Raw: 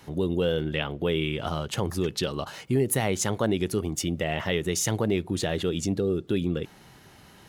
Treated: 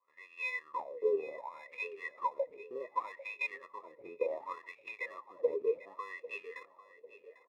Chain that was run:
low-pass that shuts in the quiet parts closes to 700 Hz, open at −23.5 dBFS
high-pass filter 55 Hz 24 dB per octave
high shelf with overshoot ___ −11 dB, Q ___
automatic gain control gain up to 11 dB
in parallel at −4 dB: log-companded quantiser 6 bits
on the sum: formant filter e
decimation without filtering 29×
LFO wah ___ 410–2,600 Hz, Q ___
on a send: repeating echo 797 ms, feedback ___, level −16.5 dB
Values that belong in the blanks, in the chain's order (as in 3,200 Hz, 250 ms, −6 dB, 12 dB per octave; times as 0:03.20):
5,000 Hz, 1.5, 0.67 Hz, 15, 42%